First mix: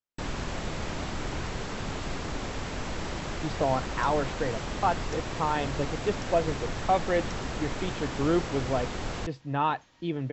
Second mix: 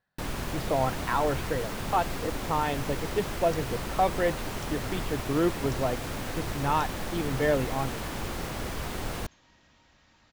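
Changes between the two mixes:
speech: entry −2.90 s
second sound: entry −0.50 s
master: remove linear-phase brick-wall low-pass 7,900 Hz

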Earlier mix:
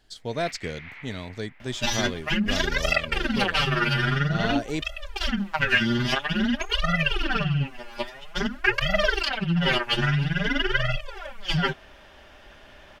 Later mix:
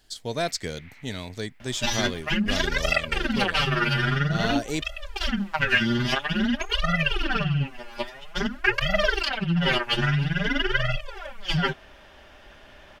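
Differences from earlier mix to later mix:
first sound −10.5 dB
second sound: add high-shelf EQ 4,900 Hz −11 dB
master: add high-shelf EQ 5,200 Hz +11 dB

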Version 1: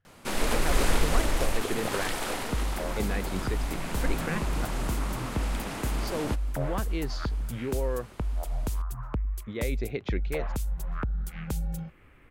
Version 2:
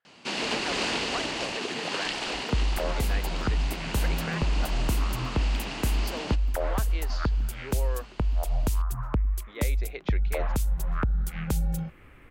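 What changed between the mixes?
speech: add band-pass filter 580–7,300 Hz
first sound: add loudspeaker in its box 170–7,200 Hz, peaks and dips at 530 Hz −4 dB, 1,300 Hz −4 dB, 2,800 Hz +9 dB, 4,500 Hz +7 dB
second sound +4.5 dB

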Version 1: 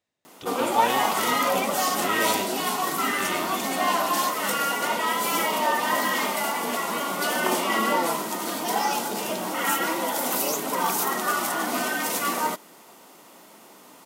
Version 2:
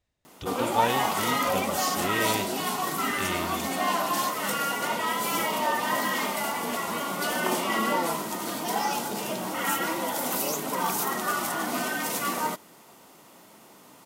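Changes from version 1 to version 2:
background −3.0 dB
master: remove high-pass filter 200 Hz 12 dB per octave

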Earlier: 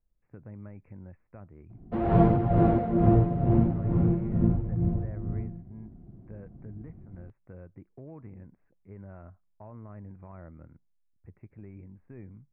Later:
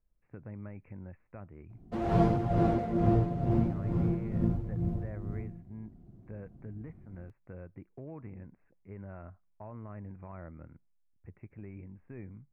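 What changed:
background −5.5 dB
master: remove high-frequency loss of the air 420 metres

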